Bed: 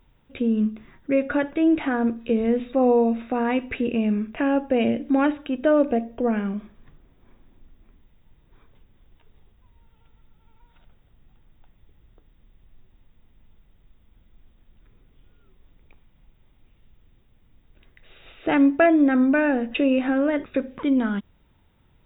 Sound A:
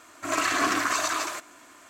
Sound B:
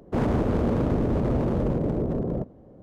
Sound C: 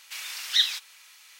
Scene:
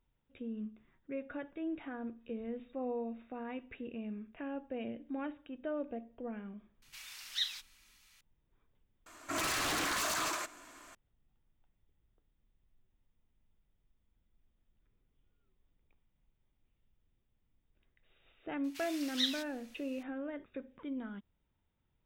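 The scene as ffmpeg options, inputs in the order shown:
-filter_complex "[3:a]asplit=2[a][b];[0:a]volume=-19.5dB[c];[1:a]aeval=exprs='0.0562*(abs(mod(val(0)/0.0562+3,4)-2)-1)':c=same[d];[a]atrim=end=1.39,asetpts=PTS-STARTPTS,volume=-13dB,afade=t=in:d=0.004:c=hsin,afade=t=out:st=1.386:d=0.004:c=hsin,adelay=300762S[e];[d]atrim=end=1.89,asetpts=PTS-STARTPTS,volume=-4dB,afade=t=in:d=0.004:c=hsin,afade=t=out:st=1.886:d=0.004:c=hsin,adelay=399546S[f];[b]atrim=end=1.39,asetpts=PTS-STARTPTS,volume=-11.5dB,afade=t=in:d=0.004:c=hsin,afade=t=out:st=1.386:d=0.004:c=hsin,adelay=18640[g];[c][e][f][g]amix=inputs=4:normalize=0"

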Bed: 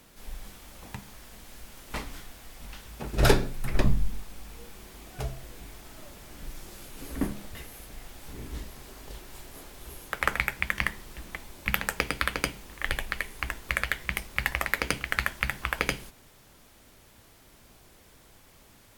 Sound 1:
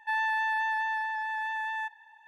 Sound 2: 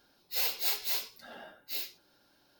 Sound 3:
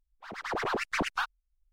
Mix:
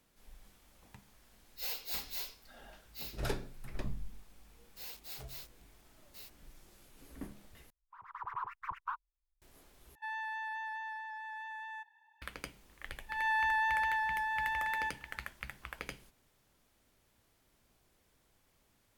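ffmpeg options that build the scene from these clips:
-filter_complex "[2:a]asplit=2[a][b];[1:a]asplit=2[c][d];[0:a]volume=-16dB[e];[b]acrusher=bits=5:mix=0:aa=0.000001[f];[3:a]firequalizer=gain_entry='entry(120,0);entry(240,-27);entry(390,-19);entry(620,-22);entry(980,12);entry(1600,-4);entry(4400,-23);entry(8700,-21);entry(15000,-4)':delay=0.05:min_phase=1[g];[c]acontrast=26[h];[d]dynaudnorm=f=130:g=3:m=11.5dB[i];[e]asplit=3[j][k][l];[j]atrim=end=7.704[m];[g]atrim=end=1.72,asetpts=PTS-STARTPTS,volume=-12.5dB[n];[k]atrim=start=9.416:end=9.954[o];[h]atrim=end=2.27,asetpts=PTS-STARTPTS,volume=-16.5dB[p];[l]atrim=start=12.216[q];[a]atrim=end=2.59,asetpts=PTS-STARTPTS,volume=-8.5dB,afade=t=in:d=0.004:c=hsin,afade=t=out:st=2.586:d=0.004:c=hsin,adelay=1260[r];[f]atrim=end=2.59,asetpts=PTS-STARTPTS,volume=-16.5dB,afade=t=in:d=0.004:c=hsin,afade=t=out:st=2.586:d=0.004:c=hsin,adelay=4440[s];[i]atrim=end=2.27,asetpts=PTS-STARTPTS,volume=-13.5dB,afade=t=in:d=0.004:c=hsin,afade=t=out:st=2.266:d=0.004:c=hsin,adelay=13020[t];[m][n]acrossfade=d=0.004:c1=hsin:c2=hsin[u];[u][o]acrossfade=d=0.004:c1=hsin:c2=hsin[v];[v][p]acrossfade=d=0.004:c1=hsin:c2=hsin[w];[w][q]acrossfade=d=0.004:c1=hsin:c2=hsin[x];[x][r][s][t]amix=inputs=4:normalize=0"

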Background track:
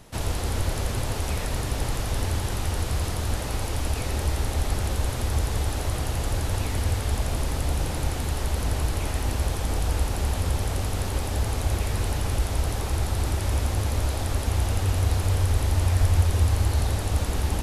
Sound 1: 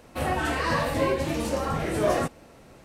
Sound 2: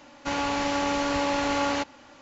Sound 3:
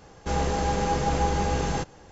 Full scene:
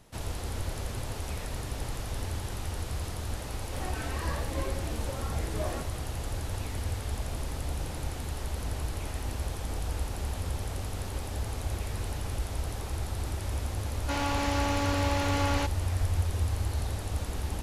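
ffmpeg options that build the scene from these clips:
-filter_complex "[0:a]volume=-8dB[a];[2:a]volume=23dB,asoftclip=hard,volume=-23dB[b];[1:a]atrim=end=2.84,asetpts=PTS-STARTPTS,volume=-12.5dB,afade=t=in:d=0.004:c=hsin,afade=t=out:st=2.836:d=0.004:c=hsin,adelay=3560[c];[b]atrim=end=2.21,asetpts=PTS-STARTPTS,volume=-2.5dB,afade=t=in:d=0.004:c=hsin,afade=t=out:st=2.206:d=0.004:c=hsin,adelay=13830[d];[a][c][d]amix=inputs=3:normalize=0"

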